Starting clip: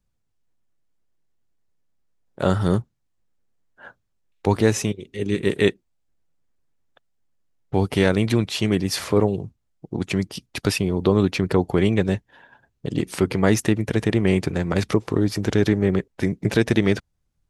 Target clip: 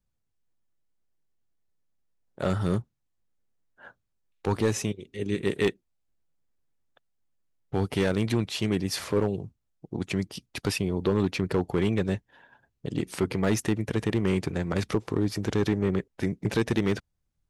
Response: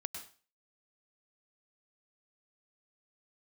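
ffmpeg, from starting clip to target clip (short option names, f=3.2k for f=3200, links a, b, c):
-af "volume=10.5dB,asoftclip=hard,volume=-10.5dB,volume=-5.5dB"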